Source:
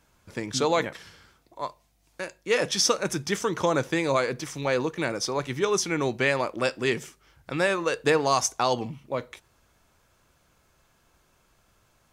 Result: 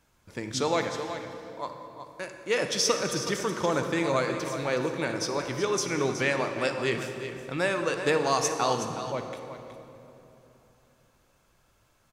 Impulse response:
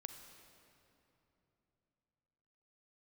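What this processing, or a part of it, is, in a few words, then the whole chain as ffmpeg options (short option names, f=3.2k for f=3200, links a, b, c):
cave: -filter_complex "[0:a]aecho=1:1:370:0.299[a];[1:a]atrim=start_sample=2205[b];[a][b]afir=irnorm=-1:irlink=0,volume=2dB"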